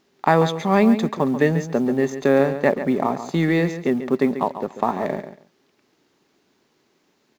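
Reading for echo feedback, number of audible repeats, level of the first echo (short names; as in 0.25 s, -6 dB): 18%, 2, -11.0 dB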